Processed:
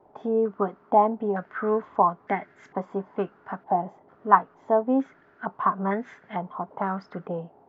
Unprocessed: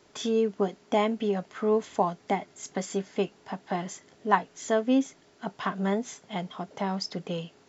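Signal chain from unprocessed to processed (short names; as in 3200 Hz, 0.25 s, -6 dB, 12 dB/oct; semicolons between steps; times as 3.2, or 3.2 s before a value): stepped low-pass 2.2 Hz 810–1700 Hz; gain -1 dB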